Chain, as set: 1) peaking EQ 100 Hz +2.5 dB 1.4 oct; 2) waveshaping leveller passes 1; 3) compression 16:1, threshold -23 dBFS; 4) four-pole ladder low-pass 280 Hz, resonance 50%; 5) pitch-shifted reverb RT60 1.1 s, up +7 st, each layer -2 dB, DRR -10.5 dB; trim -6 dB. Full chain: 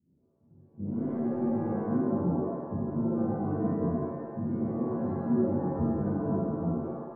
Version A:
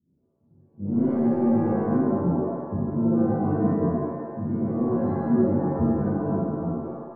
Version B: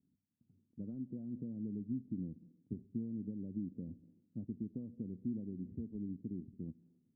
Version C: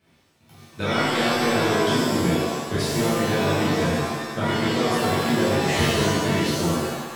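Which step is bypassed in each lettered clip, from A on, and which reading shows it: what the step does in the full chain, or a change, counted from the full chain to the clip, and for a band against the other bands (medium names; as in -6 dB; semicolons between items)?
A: 3, mean gain reduction 4.5 dB; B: 5, loudness change -13.5 LU; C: 4, 1 kHz band +7.0 dB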